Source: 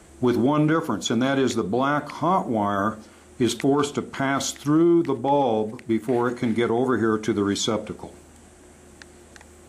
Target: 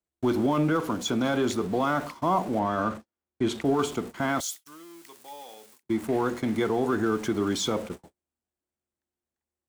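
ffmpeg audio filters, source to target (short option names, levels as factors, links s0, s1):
-filter_complex "[0:a]aeval=exprs='val(0)+0.5*0.0224*sgn(val(0))':c=same,asettb=1/sr,asplit=3[s0][s1][s2];[s0]atrim=end=2.594[s3];[s1]atrim=start=2.59:end=3.65,asetpts=PTS-STARTPTS,afade=t=in:d=0.004:c=qsin,afade=t=out:st=1.056:d=0.004:c=qsin,lowpass=f=3600:p=1[s4];[s2]atrim=start=3.646[s5];[s3][s4]acrossfade=d=0.004:c1=hsin:c2=qsin[s6];[s6][s5]acrossfade=d=0.004:c1=qsin:c2=hsin,agate=range=0.00282:threshold=0.0355:ratio=16:detection=peak,asettb=1/sr,asplit=3[s7][s8][s9];[s7]atrim=end=4.404[s10];[s8]atrim=start=4.4:end=5.83,asetpts=PTS-STARTPTS,afade=t=in:d=0.004:c=qsin,afade=t=out:st=1.426:d=0.004:c=qsin,aderivative[s11];[s9]atrim=start=5.826[s12];[s10][s11]acrossfade=d=0.004:c1=hsin:c2=qsin[s13];[s13][s12]acrossfade=d=0.004:c1=qsin:c2=hsin,acrossover=split=350|960|2500[s14][s15][s16][s17];[s15]crystalizer=i=7.5:c=0[s18];[s14][s18][s16][s17]amix=inputs=4:normalize=0,volume=0.562"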